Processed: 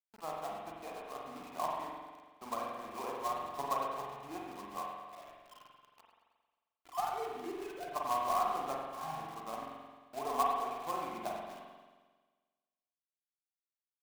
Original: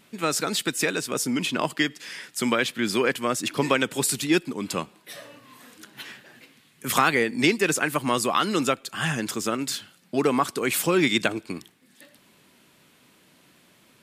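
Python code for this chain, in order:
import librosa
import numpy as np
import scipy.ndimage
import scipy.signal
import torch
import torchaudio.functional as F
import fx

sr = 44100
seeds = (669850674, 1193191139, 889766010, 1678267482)

y = fx.sine_speech(x, sr, at=(6.01, 7.88))
y = fx.formant_cascade(y, sr, vowel='a')
y = fx.hum_notches(y, sr, base_hz=60, count=9)
y = fx.quant_companded(y, sr, bits=4)
y = fx.echo_thinned(y, sr, ms=107, feedback_pct=59, hz=420.0, wet_db=-15.5)
y = fx.rev_spring(y, sr, rt60_s=1.4, pass_ms=(44,), chirp_ms=70, drr_db=-2.0)
y = F.gain(torch.from_numpy(y), -1.5).numpy()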